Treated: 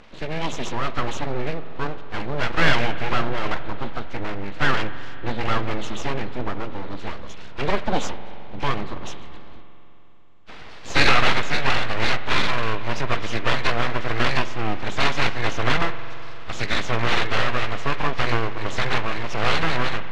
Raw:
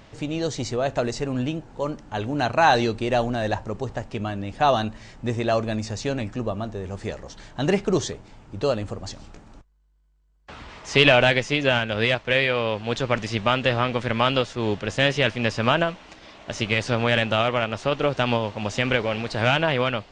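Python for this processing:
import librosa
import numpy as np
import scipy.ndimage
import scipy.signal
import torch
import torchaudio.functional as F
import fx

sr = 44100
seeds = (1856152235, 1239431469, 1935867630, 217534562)

y = fx.freq_compress(x, sr, knee_hz=1100.0, ratio=1.5)
y = fx.high_shelf(y, sr, hz=3500.0, db=11.5)
y = np.abs(y)
y = scipy.signal.sosfilt(scipy.signal.butter(2, 5800.0, 'lowpass', fs=sr, output='sos'), y)
y = fx.rev_spring(y, sr, rt60_s=3.5, pass_ms=(44,), chirp_ms=55, drr_db=12.0)
y = y * librosa.db_to_amplitude(2.0)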